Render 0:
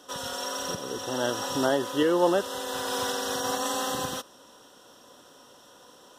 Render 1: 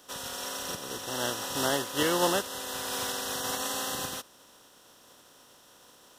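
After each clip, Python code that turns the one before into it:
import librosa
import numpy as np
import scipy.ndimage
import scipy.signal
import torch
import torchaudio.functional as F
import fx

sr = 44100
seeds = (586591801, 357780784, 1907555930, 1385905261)

y = fx.spec_flatten(x, sr, power=0.59)
y = F.gain(torch.from_numpy(y), -3.5).numpy()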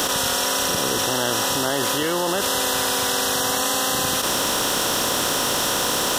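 y = fx.env_flatten(x, sr, amount_pct=100)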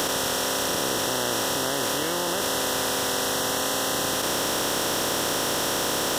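y = fx.bin_compress(x, sr, power=0.4)
y = F.gain(torch.from_numpy(y), -8.5).numpy()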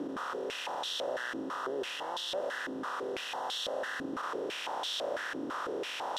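y = fx.filter_held_bandpass(x, sr, hz=6.0, low_hz=290.0, high_hz=3500.0)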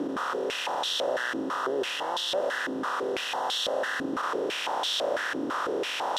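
y = fx.low_shelf(x, sr, hz=61.0, db=-8.0)
y = F.gain(torch.from_numpy(y), 7.0).numpy()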